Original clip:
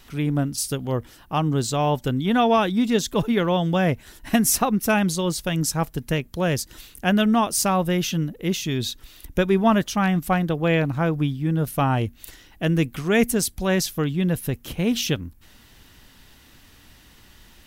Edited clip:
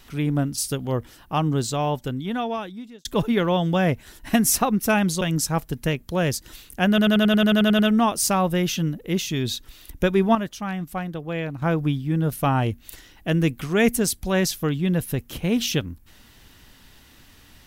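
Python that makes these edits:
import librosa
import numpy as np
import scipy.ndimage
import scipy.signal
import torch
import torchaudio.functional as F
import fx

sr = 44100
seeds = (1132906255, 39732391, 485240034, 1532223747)

y = fx.edit(x, sr, fx.fade_out_span(start_s=1.47, length_s=1.58),
    fx.cut(start_s=5.21, length_s=0.25),
    fx.stutter(start_s=7.14, slice_s=0.09, count=11),
    fx.clip_gain(start_s=9.7, length_s=1.27, db=-8.0), tone=tone)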